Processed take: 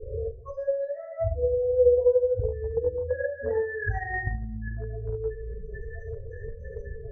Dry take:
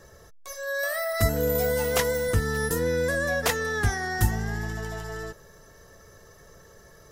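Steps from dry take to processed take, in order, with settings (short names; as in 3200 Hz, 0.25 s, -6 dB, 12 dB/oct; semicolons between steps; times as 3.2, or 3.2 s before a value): fuzz box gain 47 dB, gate -50 dBFS; dynamic EQ 1300 Hz, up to -3 dB, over -29 dBFS, Q 0.86; loudest bins only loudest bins 4; shoebox room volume 98 m³, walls mixed, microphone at 3.3 m; compressor 16:1, threshold -21 dBFS, peak gain reduction 24 dB; bell 170 Hz -10 dB 0.54 oct; notch comb 300 Hz; gate -23 dBFS, range -8 dB; low-pass sweep 490 Hz -> 1600 Hz, 1.54–4.22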